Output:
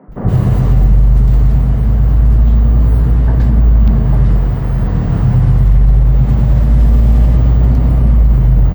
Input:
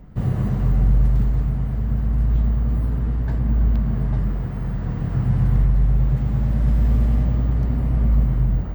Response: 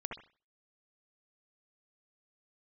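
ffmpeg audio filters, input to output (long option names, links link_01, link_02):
-filter_complex "[0:a]acrossover=split=210|1700[link_01][link_02][link_03];[link_01]adelay=80[link_04];[link_03]adelay=120[link_05];[link_04][link_02][link_05]amix=inputs=3:normalize=0,alimiter=level_in=13dB:limit=-1dB:release=50:level=0:latency=1,volume=-1dB"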